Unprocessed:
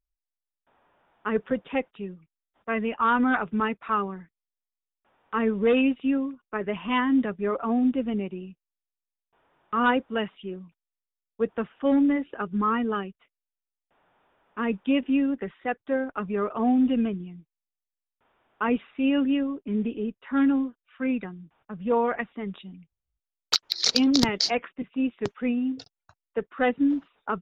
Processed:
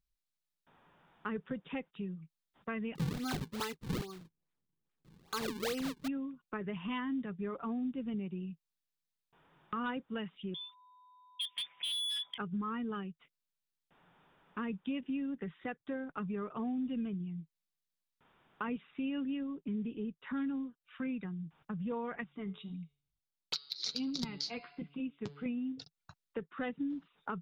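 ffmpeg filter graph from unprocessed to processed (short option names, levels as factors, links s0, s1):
-filter_complex "[0:a]asettb=1/sr,asplit=3[s0][s1][s2];[s0]atrim=end=2.954[s3];[s1]atrim=start=2.95:end=6.08,asetpts=PTS-STARTPTS,afade=t=in:d=0.004:c=qsin,afade=t=out:st=3.126:d=0.004:c=qsin,aecho=1:1:2.5:0.7,atrim=end_sample=138033,acrusher=samples=39:mix=1:aa=0.000001:lfo=1:lforange=62.4:lforate=2.4[s4];[s2]atrim=start=6.076[s5];[s3][s4]acrossfade=d=0.004:c1=hsin:c2=qsin[s6];[s6][s5]acrossfade=d=0.004:c1=qsin:c2=hsin,asettb=1/sr,asplit=3[s7][s8][s9];[s7]atrim=end=10.544[s10];[s8]atrim=start=10.54:end=12.38,asetpts=PTS-STARTPTS,afade=t=in:d=0.004:c=qsin,afade=t=out:st=1.836:d=0.004:c=qsin,lowpass=f=3100:t=q:w=0.5098,lowpass=f=3100:t=q:w=0.6013,lowpass=f=3100:t=q:w=0.9,lowpass=f=3100:t=q:w=2.563,afreqshift=-3700,asoftclip=type=hard:threshold=0.0501,aeval=exprs='val(0)+0.00126*sin(2*PI*1000*n/s)':c=same[s11];[s9]atrim=start=12.376[s12];[s10][s11]acrossfade=d=0.004:c1=hsin:c2=qsin[s13];[s13][s12]acrossfade=d=0.004:c1=qsin:c2=hsin,asettb=1/sr,asplit=3[s14][s15][s16];[s14]atrim=end=22.244[s17];[s15]atrim=start=22.24:end=25.46,asetpts=PTS-STARTPTS,afade=t=in:d=0.004:c=qsin,afade=t=out:st=3.216:d=0.004:c=qsin,bandreject=f=1800:w=9,bandreject=f=142.4:t=h:w=4,bandreject=f=284.8:t=h:w=4,bandreject=f=427.2:t=h:w=4,bandreject=f=569.6:t=h:w=4,bandreject=f=712:t=h:w=4,bandreject=f=854.4:t=h:w=4,bandreject=f=996.8:t=h:w=4,bandreject=f=1139.2:t=h:w=4,bandreject=f=1281.6:t=h:w=4,bandreject=f=1424:t=h:w=4,bandreject=f=1566.4:t=h:w=4,bandreject=f=1708.8:t=h:w=4,bandreject=f=1851.2:t=h:w=4,bandreject=f=1993.6:t=h:w=4,bandreject=f=2136:t=h:w=4,bandreject=f=2278.4:t=h:w=4,bandreject=f=2420.8:t=h:w=4,bandreject=f=2563.2:t=h:w=4,bandreject=f=2705.6:t=h:w=4,bandreject=f=2848:t=h:w=4,bandreject=f=2990.4:t=h:w=4,bandreject=f=3132.8:t=h:w=4,bandreject=f=3275.2:t=h:w=4,bandreject=f=3417.6:t=h:w=4,bandreject=f=3560:t=h:w=4,bandreject=f=3702.4:t=h:w=4,bandreject=f=3844.8:t=h:w=4,bandreject=f=3987.2:t=h:w=4,bandreject=f=4129.6:t=h:w=4,bandreject=f=4272:t=h:w=4,bandreject=f=4414.4:t=h:w=4,bandreject=f=4556.8:t=h:w=4,bandreject=f=4699.2:t=h:w=4,bandreject=f=4841.6:t=h:w=4,bandreject=f=4984:t=h:w=4,flanger=delay=5.2:depth=3.8:regen=-30:speed=1.5:shape=sinusoidal[s18];[s16]atrim=start=25.456[s19];[s17][s18]acrossfade=d=0.004:c1=hsin:c2=qsin[s20];[s20][s19]acrossfade=d=0.004:c1=qsin:c2=hsin,equalizer=f=160:t=o:w=0.67:g=11,equalizer=f=630:t=o:w=0.67:g=-5,equalizer=f=4000:t=o:w=0.67:g=5,acompressor=threshold=0.01:ratio=3"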